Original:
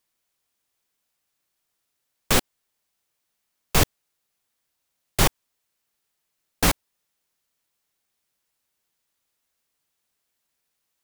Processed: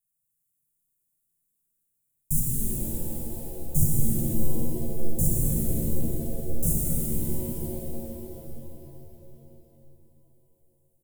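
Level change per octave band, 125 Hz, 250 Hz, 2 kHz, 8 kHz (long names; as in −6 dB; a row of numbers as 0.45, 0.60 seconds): +4.5 dB, +4.0 dB, below −25 dB, −0.5 dB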